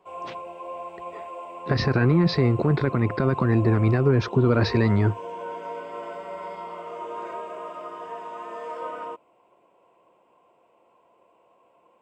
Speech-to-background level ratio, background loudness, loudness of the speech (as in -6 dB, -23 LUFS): 14.5 dB, -36.5 LUFS, -22.0 LUFS